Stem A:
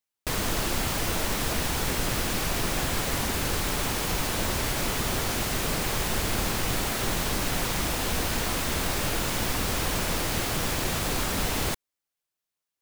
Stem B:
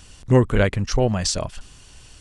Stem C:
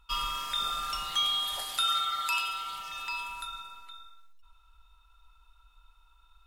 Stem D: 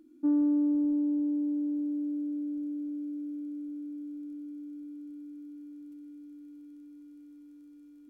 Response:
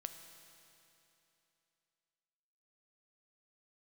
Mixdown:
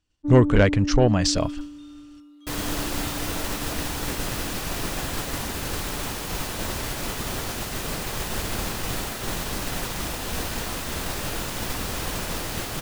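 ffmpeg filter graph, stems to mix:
-filter_complex "[0:a]bandreject=f=2200:w=28,adelay=2200,volume=1.06[s0];[1:a]lowpass=6300,acontrast=86,volume=0.562[s1];[2:a]adelay=1250,volume=0.141[s2];[3:a]volume=1[s3];[s0][s1][s2][s3]amix=inputs=4:normalize=0,agate=range=0.0224:threshold=0.0708:ratio=3:detection=peak"

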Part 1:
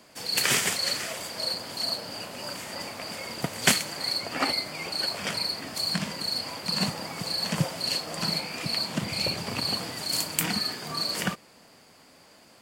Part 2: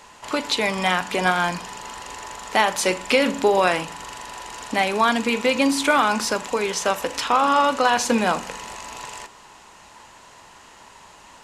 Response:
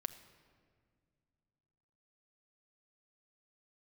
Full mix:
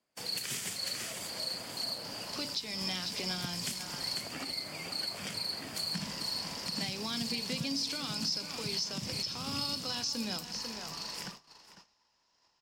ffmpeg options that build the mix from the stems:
-filter_complex "[0:a]acompressor=threshold=0.0355:ratio=2.5,volume=0.631,afade=t=out:st=9.81:d=0.21:silence=0.398107,asplit=2[s0][s1];[s1]volume=0.316[s2];[1:a]acompressor=mode=upward:threshold=0.0158:ratio=2.5,lowpass=f=5200:t=q:w=8.9,adelay=2050,volume=0.266,asplit=3[s3][s4][s5];[s3]atrim=end=4.15,asetpts=PTS-STARTPTS,afade=t=out:st=4.146:d=0.004:c=hsin[s6];[s4]atrim=start=4.15:end=5.94,asetpts=PTS-STARTPTS,volume=0[s7];[s5]atrim=start=5.94,asetpts=PTS-STARTPTS,afade=t=in:d=0.004:c=hsin[s8];[s6][s7][s8]concat=n=3:v=0:a=1,asplit=2[s9][s10];[s10]volume=0.224[s11];[s2][s11]amix=inputs=2:normalize=0,aecho=0:1:496:1[s12];[s0][s9][s12]amix=inputs=3:normalize=0,agate=range=0.0631:threshold=0.00501:ratio=16:detection=peak,acrossover=split=290|3000[s13][s14][s15];[s14]acompressor=threshold=0.00631:ratio=6[s16];[s13][s16][s15]amix=inputs=3:normalize=0,alimiter=limit=0.0668:level=0:latency=1:release=234"

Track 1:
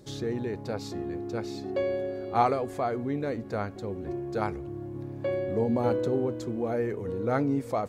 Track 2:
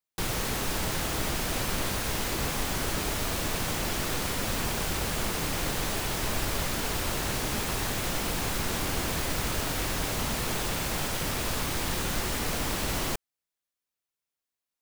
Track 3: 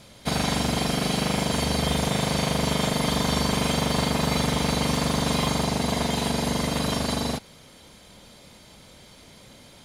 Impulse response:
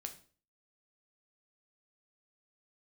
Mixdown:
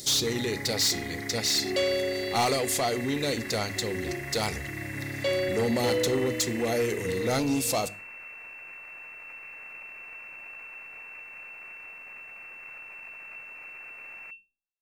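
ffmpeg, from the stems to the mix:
-filter_complex "[0:a]aexciter=amount=5.2:drive=9.6:freq=2600,asoftclip=type=tanh:threshold=0.0668,volume=1.06,asplit=2[s0][s1];[s1]volume=0.596[s2];[1:a]aeval=exprs='abs(val(0))':c=same,adelay=1150,volume=0.211,asplit=2[s3][s4];[s4]volume=0.106[s5];[2:a]highpass=550,equalizer=f=720:t=o:w=0.78:g=14.5,volume=0.211[s6];[s3][s6]amix=inputs=2:normalize=0,lowpass=f=2300:t=q:w=0.5098,lowpass=f=2300:t=q:w=0.6013,lowpass=f=2300:t=q:w=0.9,lowpass=f=2300:t=q:w=2.563,afreqshift=-2700,alimiter=level_in=1.78:limit=0.0631:level=0:latency=1:release=322,volume=0.562,volume=1[s7];[3:a]atrim=start_sample=2205[s8];[s2][s5]amix=inputs=2:normalize=0[s9];[s9][s8]afir=irnorm=-1:irlink=0[s10];[s0][s7][s10]amix=inputs=3:normalize=0,bandreject=f=50:t=h:w=6,bandreject=f=100:t=h:w=6,bandreject=f=150:t=h:w=6,bandreject=f=200:t=h:w=6,bandreject=f=250:t=h:w=6,bandreject=f=300:t=h:w=6,bandreject=f=350:t=h:w=6"

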